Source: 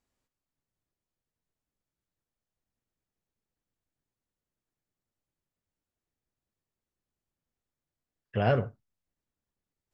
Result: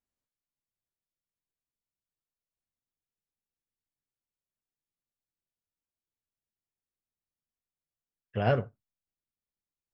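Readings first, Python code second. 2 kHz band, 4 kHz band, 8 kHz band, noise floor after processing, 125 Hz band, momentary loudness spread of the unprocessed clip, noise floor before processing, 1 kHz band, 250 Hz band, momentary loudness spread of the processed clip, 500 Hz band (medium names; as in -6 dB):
-1.0 dB, -1.0 dB, no reading, under -85 dBFS, -1.5 dB, 12 LU, under -85 dBFS, -1.0 dB, -1.5 dB, 14 LU, -1.0 dB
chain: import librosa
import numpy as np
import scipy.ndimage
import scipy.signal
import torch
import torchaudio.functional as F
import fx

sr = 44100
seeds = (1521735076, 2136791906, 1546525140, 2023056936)

y = fx.upward_expand(x, sr, threshold_db=-44.0, expansion=1.5)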